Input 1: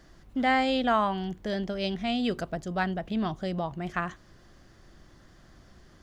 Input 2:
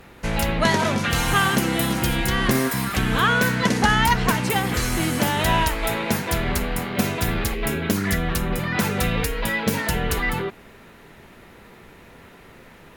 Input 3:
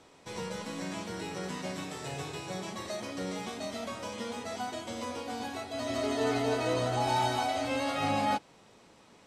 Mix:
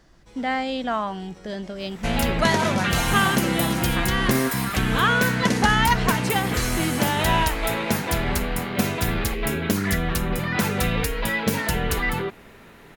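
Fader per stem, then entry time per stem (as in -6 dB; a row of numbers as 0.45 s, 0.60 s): -1.0 dB, -0.5 dB, -10.5 dB; 0.00 s, 1.80 s, 0.00 s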